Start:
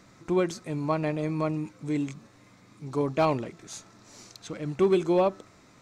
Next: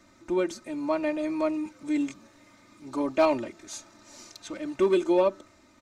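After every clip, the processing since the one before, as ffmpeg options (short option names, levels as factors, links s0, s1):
-filter_complex "[0:a]aecho=1:1:3.3:0.95,acrossover=split=330[s0][s1];[s1]dynaudnorm=f=270:g=7:m=1.58[s2];[s0][s2]amix=inputs=2:normalize=0,volume=0.562"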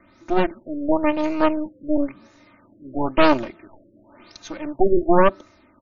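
-af "aeval=exprs='0.355*(cos(1*acos(clip(val(0)/0.355,-1,1)))-cos(1*PI/2))+0.112*(cos(6*acos(clip(val(0)/0.355,-1,1)))-cos(6*PI/2))':c=same,afftfilt=real='re*lt(b*sr/1024,580*pow(7200/580,0.5+0.5*sin(2*PI*0.96*pts/sr)))':imag='im*lt(b*sr/1024,580*pow(7200/580,0.5+0.5*sin(2*PI*0.96*pts/sr)))':win_size=1024:overlap=0.75,volume=1.58"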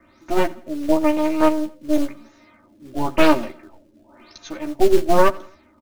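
-filter_complex "[0:a]acrossover=split=470|1800[s0][s1][s2];[s0]acrusher=bits=4:mode=log:mix=0:aa=0.000001[s3];[s3][s1][s2]amix=inputs=3:normalize=0,asplit=2[s4][s5];[s5]adelay=13,volume=0.562[s6];[s4][s6]amix=inputs=2:normalize=0,aecho=1:1:86|172|258:0.0794|0.035|0.0154,volume=0.891"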